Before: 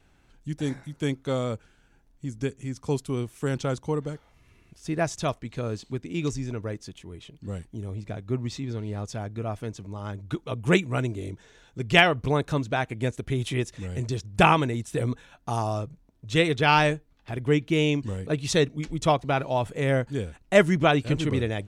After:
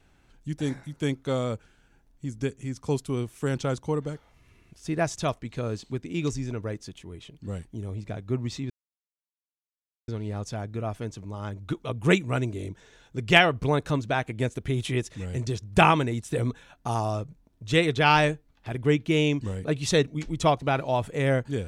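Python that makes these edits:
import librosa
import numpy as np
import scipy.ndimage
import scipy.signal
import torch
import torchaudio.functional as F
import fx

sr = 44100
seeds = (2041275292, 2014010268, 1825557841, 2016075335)

y = fx.edit(x, sr, fx.insert_silence(at_s=8.7, length_s=1.38), tone=tone)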